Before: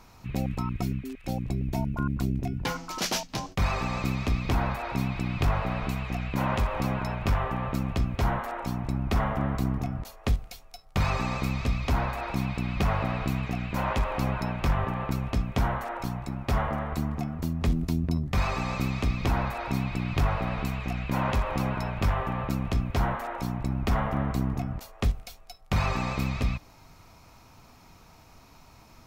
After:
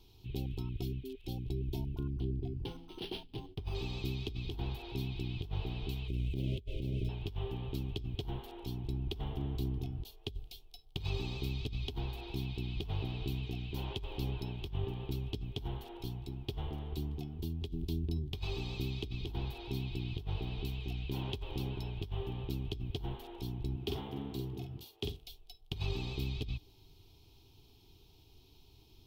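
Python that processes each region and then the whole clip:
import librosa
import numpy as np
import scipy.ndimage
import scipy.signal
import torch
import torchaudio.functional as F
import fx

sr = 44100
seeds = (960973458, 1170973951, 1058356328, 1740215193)

y = fx.chain(x, sr, fx.peak_eq(hz=3600.0, db=-6.5, octaves=1.6),
    fx.resample_linear(factor=6), at=(2.1, 3.75))
y = fx.chain(y, sr, fx.median_filter(points=9),
    fx.brickwall_bandstop(low_hz=670.0, high_hz=2000.0),
    fx.low_shelf(hz=350.0, db=6.0), at=(6.08, 7.09))
y = fx.chain(y, sr, fx.highpass(hz=140.0, slope=12),
    fx.doubler(ms=48.0, db=-5), at=(23.76, 25.22))
y = fx.curve_eq(y, sr, hz=(110.0, 210.0, 400.0, 570.0, 820.0, 1200.0, 2000.0, 3200.0, 7100.0, 14000.0), db=(0, -11, 5, -20, -10, -23, -20, 7, -11, -1))
y = fx.over_compress(y, sr, threshold_db=-28.0, ratio=-0.5)
y = F.gain(torch.from_numpy(y), -6.5).numpy()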